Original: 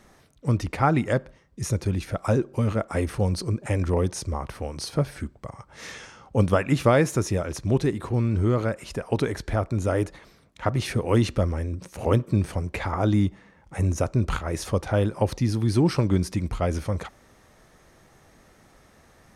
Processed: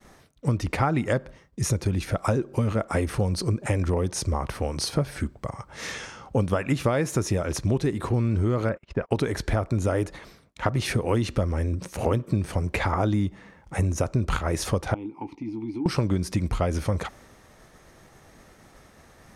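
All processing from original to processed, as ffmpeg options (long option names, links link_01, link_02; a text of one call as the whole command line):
ffmpeg -i in.wav -filter_complex "[0:a]asettb=1/sr,asplit=3[link_01][link_02][link_03];[link_01]atrim=end=8.694[link_04];[link_02]atrim=start=8.69:end=9.11,asetpts=PTS-STARTPTS,afade=type=in:duration=0.004:curve=qsin,afade=type=out:start_time=0.416:duration=0.004:curve=qsin,bandreject=frequency=780:width=15,agate=range=-37dB:threshold=-39dB:ratio=16:release=100:detection=peak,lowpass=2600[link_05];[link_03]atrim=start=9.106[link_06];[link_04][link_05]acrossfade=duration=0.004:curve1=hsin:curve2=qsin[link_07];[link_07][link_06]acrossfade=duration=0.004:curve1=qsin:curve2=hsin,asettb=1/sr,asplit=3[link_08][link_09][link_10];[link_08]atrim=end=14.944[link_11];[link_09]atrim=start=14.94:end=15.86,asetpts=PTS-STARTPTS,afade=type=in:duration=0.004:curve=qsin,afade=type=out:start_time=0.916:duration=0.004:curve=qsin,asplit=3[link_12][link_13][link_14];[link_12]bandpass=frequency=300:width_type=q:width=8,volume=0dB[link_15];[link_13]bandpass=frequency=870:width_type=q:width=8,volume=-6dB[link_16];[link_14]bandpass=frequency=2240:width_type=q:width=8,volume=-9dB[link_17];[link_15][link_16][link_17]amix=inputs=3:normalize=0,acompressor=threshold=-34dB:ratio=3:attack=3.2:release=140:knee=1:detection=peak,asplit=2[link_18][link_19];[link_19]adelay=18,volume=-11dB[link_20];[link_18][link_20]amix=inputs=2:normalize=0,atrim=end_sample=40572[link_21];[link_10]atrim=start=15.856[link_22];[link_11][link_21]acrossfade=duration=0.004:curve1=hsin:curve2=qsin[link_23];[link_23][link_22]acrossfade=duration=0.004:curve1=qsin:curve2=hsin,agate=range=-33dB:threshold=-52dB:ratio=3:detection=peak,acompressor=threshold=-25dB:ratio=6,volume=5dB" out.wav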